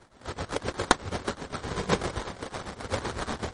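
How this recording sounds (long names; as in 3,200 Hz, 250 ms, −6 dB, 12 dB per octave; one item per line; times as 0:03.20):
a buzz of ramps at a fixed pitch in blocks of 8 samples
tremolo triangle 7.9 Hz, depth 85%
aliases and images of a low sample rate 2,700 Hz, jitter 20%
MP3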